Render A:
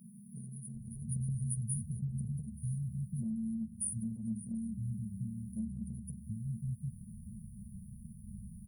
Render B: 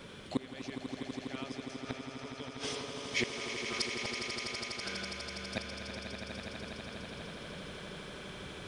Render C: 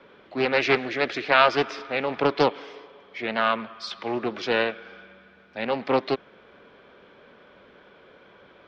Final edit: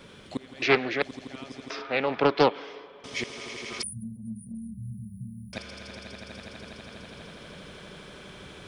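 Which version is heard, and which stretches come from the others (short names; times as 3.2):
B
0.62–1.02 from C
1.7–3.04 from C
3.83–5.53 from A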